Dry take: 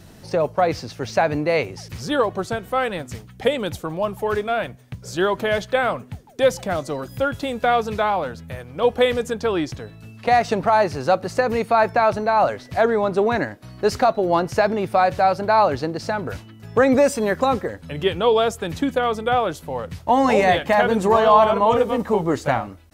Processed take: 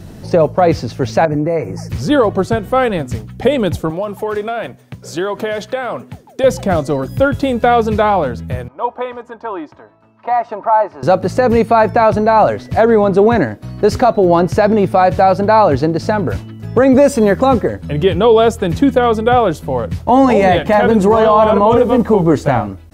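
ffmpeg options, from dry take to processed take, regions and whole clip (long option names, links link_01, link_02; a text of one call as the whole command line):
ffmpeg -i in.wav -filter_complex "[0:a]asettb=1/sr,asplit=3[link_01][link_02][link_03];[link_01]atrim=end=1.254[link_04];[link_02]atrim=start=1.25:end=1.89,asetpts=PTS-STARTPTS,afade=type=in:duration=0.004:curve=qsin,afade=type=out:start_time=0.636:duration=0.004:curve=qsin,aecho=1:1:6.3:0.65,atrim=end_sample=28224,acompressor=threshold=-30dB:ratio=2:attack=3.2:release=140:knee=1:detection=peak,asuperstop=centerf=3400:order=4:qfactor=1[link_05];[link_03]atrim=start=1.886[link_06];[link_04][link_05]acrossfade=duration=0.004:curve1=hsin:curve2=qsin[link_07];[link_07][link_06]acrossfade=duration=0.004:curve1=qsin:curve2=hsin,asettb=1/sr,asplit=3[link_08][link_09][link_10];[link_08]atrim=end=3.904[link_11];[link_09]atrim=start=3.9:end=6.44,asetpts=PTS-STARTPTS,afade=type=in:duration=0.004:curve=qsin,afade=type=out:start_time=2.536:duration=0.004:curve=qsin,highpass=frequency=390:poles=1,acompressor=threshold=-24dB:ratio=5:attack=3.2:release=140:knee=1:detection=peak[link_12];[link_10]atrim=start=6.436[link_13];[link_11][link_12]acrossfade=duration=0.004:curve1=hsin:curve2=qsin[link_14];[link_14][link_13]acrossfade=duration=0.004:curve1=qsin:curve2=hsin,asettb=1/sr,asplit=3[link_15][link_16][link_17];[link_15]atrim=end=8.684[link_18];[link_16]atrim=start=8.68:end=11.03,asetpts=PTS-STARTPTS,afade=type=in:duration=0.004:curve=qsin,afade=type=out:start_time=2.346:duration=0.004:curve=qsin,bandpass=frequency=990:width_type=q:width=2.7,aecho=1:1:3.2:0.42,atrim=end_sample=103635[link_19];[link_17]atrim=start=11.026[link_20];[link_18][link_19]acrossfade=duration=0.004:curve1=hsin:curve2=qsin[link_21];[link_21][link_20]acrossfade=duration=0.004:curve1=qsin:curve2=hsin,tiltshelf=frequency=700:gain=4.5,alimiter=level_in=9.5dB:limit=-1dB:release=50:level=0:latency=1,volume=-1dB" out.wav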